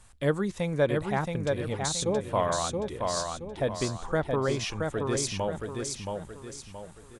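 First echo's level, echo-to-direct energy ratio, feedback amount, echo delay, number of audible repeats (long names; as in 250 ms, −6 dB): −4.0 dB, −3.5 dB, 38%, 674 ms, 4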